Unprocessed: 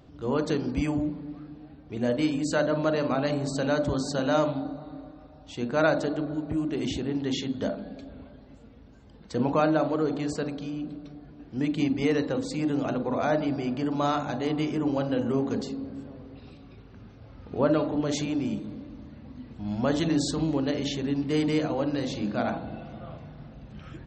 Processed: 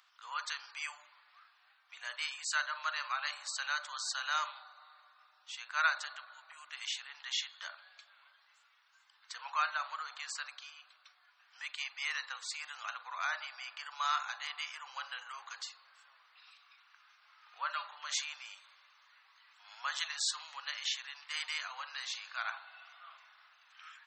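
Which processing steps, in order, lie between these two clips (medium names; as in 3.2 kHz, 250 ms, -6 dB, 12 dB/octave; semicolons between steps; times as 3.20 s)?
steep high-pass 1.1 kHz 36 dB/octave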